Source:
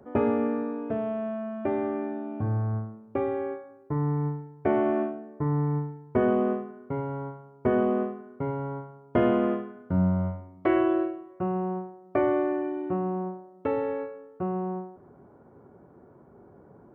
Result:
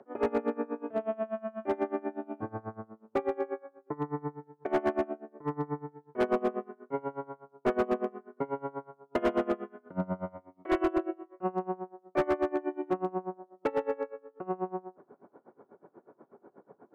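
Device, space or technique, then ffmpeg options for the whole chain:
helicopter radio: -af "highpass=310,lowpass=3000,aeval=exprs='val(0)*pow(10,-24*(0.5-0.5*cos(2*PI*8.2*n/s))/20)':c=same,asoftclip=type=hard:threshold=0.0531,volume=1.68"

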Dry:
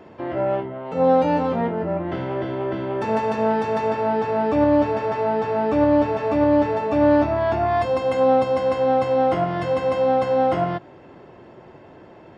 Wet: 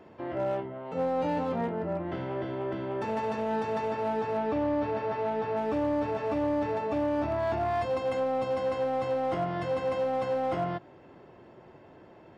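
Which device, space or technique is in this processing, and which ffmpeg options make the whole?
limiter into clipper: -filter_complex "[0:a]alimiter=limit=0.2:level=0:latency=1:release=11,asoftclip=type=hard:threshold=0.158,asettb=1/sr,asplit=3[s0][s1][s2];[s0]atrim=end=4.374[s3];[s1]atrim=start=4.37:end=5.57,asetpts=PTS-STARTPTS,afade=t=in:d=0.004:c=qsin,afade=t=out:st=1.196:d=0.004:c=qsin,lowpass=5000[s4];[s2]atrim=start=5.566[s5];[s3][s4]acrossfade=d=0.004:c1=hsin:c2=qsin[s6];[s6][s5]acrossfade=d=0.004:c1=qsin:c2=hsin,volume=0.422"

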